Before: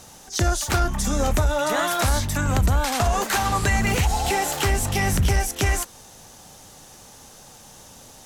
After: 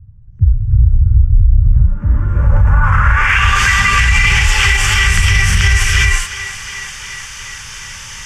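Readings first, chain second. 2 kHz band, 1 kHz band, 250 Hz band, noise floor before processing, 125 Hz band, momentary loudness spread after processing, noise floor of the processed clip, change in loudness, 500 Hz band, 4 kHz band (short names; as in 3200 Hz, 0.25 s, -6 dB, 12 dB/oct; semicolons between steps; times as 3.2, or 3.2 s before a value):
+15.0 dB, +4.5 dB, -1.5 dB, -47 dBFS, +11.5 dB, 16 LU, -32 dBFS, +10.0 dB, -8.0 dB, +11.0 dB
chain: passive tone stack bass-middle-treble 10-0-10; in parallel at -2 dB: compressor, threshold -38 dBFS, peak gain reduction 14.5 dB; on the sum: fixed phaser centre 1700 Hz, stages 4; non-linear reverb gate 0.45 s rising, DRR -3.5 dB; companded quantiser 6-bit; low-pass sweep 110 Hz -> 4100 Hz, 1.61–3.62; on a send: thinning echo 0.355 s, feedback 74%, high-pass 220 Hz, level -16 dB; on the sum: maximiser +17.5 dB; gain -1 dB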